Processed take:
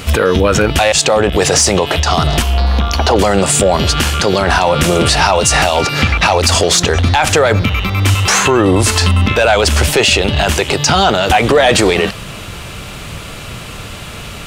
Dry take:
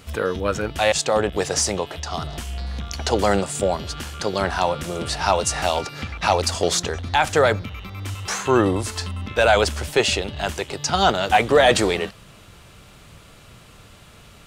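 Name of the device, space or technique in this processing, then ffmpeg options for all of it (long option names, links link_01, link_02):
mastering chain: -filter_complex "[0:a]asettb=1/sr,asplit=3[link_01][link_02][link_03];[link_01]atrim=end=2.424[link_04];[link_02]atrim=start=2.42:end=3.16,asetpts=PTS-STARTPTS,afade=type=in:duration=0.004:curve=qsin,afade=type=out:start_time=0.736:duration=0.004:curve=qsin,equalizer=frequency=125:width_type=o:width=1:gain=-9,equalizer=frequency=1000:width_type=o:width=1:gain=5,equalizer=frequency=2000:width_type=o:width=1:gain=-6,equalizer=frequency=8000:width_type=o:width=1:gain=-12[link_05];[link_03]atrim=start=3.156[link_06];[link_04][link_05]acrossfade=duration=0.004:curve1=hsin:curve2=qsin[link_07];[link_07][link_06]acrossfade=duration=0.004:curve1=qsin:curve2=hsin,equalizer=frequency=2600:width_type=o:width=0.58:gain=3,acompressor=threshold=-19dB:ratio=2.5,asoftclip=type=tanh:threshold=-10.5dB,alimiter=level_in=19.5dB:limit=-1dB:release=50:level=0:latency=1,volume=-1dB"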